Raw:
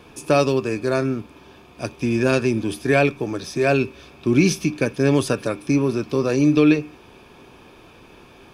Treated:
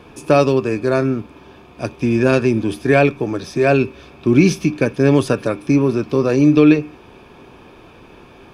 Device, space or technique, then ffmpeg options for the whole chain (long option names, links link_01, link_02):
behind a face mask: -af "highshelf=frequency=3500:gain=-8,volume=4.5dB"